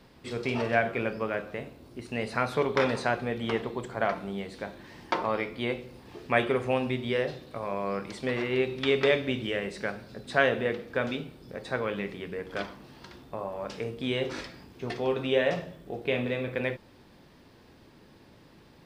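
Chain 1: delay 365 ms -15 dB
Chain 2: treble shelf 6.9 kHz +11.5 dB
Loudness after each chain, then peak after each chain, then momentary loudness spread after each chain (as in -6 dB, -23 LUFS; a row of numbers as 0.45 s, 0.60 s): -30.0 LUFS, -30.0 LUFS; -7.5 dBFS, -7.0 dBFS; 15 LU, 15 LU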